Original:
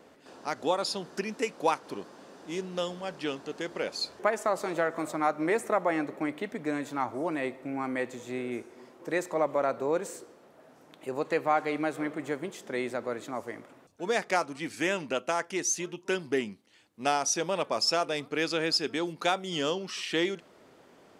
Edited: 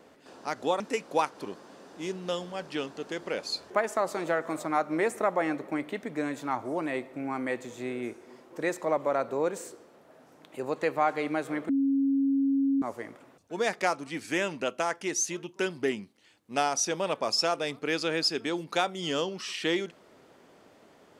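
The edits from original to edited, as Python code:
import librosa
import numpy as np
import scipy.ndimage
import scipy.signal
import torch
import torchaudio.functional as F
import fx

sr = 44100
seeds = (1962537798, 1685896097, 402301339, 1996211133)

y = fx.edit(x, sr, fx.cut(start_s=0.8, length_s=0.49),
    fx.bleep(start_s=12.18, length_s=1.13, hz=274.0, db=-22.0), tone=tone)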